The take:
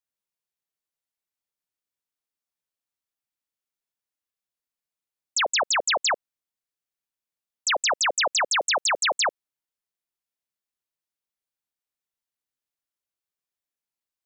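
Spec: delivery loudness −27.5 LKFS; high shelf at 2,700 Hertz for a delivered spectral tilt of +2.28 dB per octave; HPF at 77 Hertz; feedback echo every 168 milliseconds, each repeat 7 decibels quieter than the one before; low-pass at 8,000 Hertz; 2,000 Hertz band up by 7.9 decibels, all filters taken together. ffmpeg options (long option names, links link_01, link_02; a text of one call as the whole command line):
ffmpeg -i in.wav -af "highpass=77,lowpass=8000,equalizer=frequency=2000:width_type=o:gain=6.5,highshelf=frequency=2700:gain=7.5,aecho=1:1:168|336|504|672|840:0.447|0.201|0.0905|0.0407|0.0183,volume=-11dB" out.wav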